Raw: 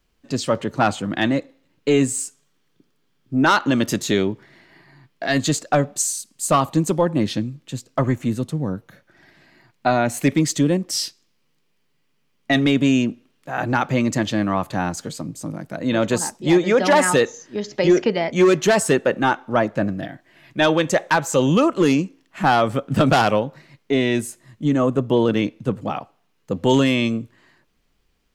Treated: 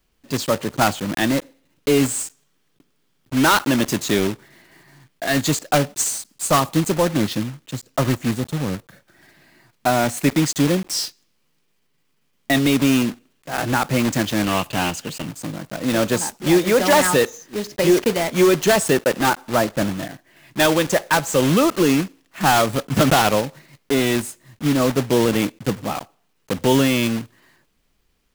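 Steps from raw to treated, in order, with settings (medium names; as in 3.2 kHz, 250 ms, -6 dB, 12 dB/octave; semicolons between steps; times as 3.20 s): block-companded coder 3-bit; 14.44–15.25 s: peaking EQ 2.8 kHz +12 dB 0.25 oct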